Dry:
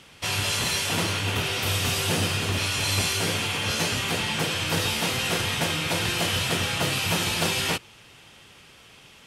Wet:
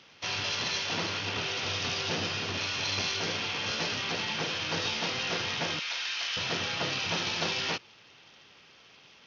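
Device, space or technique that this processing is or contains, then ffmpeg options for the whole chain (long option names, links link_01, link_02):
Bluetooth headset: -filter_complex "[0:a]asettb=1/sr,asplit=3[link_01][link_02][link_03];[link_01]atrim=end=5.794[link_04];[link_02]atrim=start=5.79:end=6.37,asetpts=PTS-STARTPTS,afade=type=in:duration=0.004:curve=qsin,afade=type=out:start_time=0.576:duration=0.004:curve=qsin,highpass=1400[link_05];[link_03]atrim=start=6.366[link_06];[link_04][link_05]acrossfade=duration=0.004:curve1=hsin:curve2=qsin[link_07];[link_07][link_06]acrossfade=duration=0.004:curve1=qsin:curve2=hsin,highpass=frequency=230:poles=1,aresample=16000,aresample=44100,volume=-5dB" -ar 48000 -c:a sbc -b:a 64k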